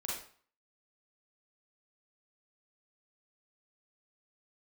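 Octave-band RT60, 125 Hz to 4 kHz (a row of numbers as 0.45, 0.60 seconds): 0.45, 0.45, 0.45, 0.50, 0.45, 0.40 seconds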